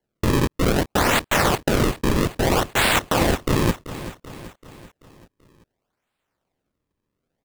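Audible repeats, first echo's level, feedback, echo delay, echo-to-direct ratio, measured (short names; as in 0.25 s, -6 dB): 4, -14.0 dB, 53%, 0.385 s, -12.5 dB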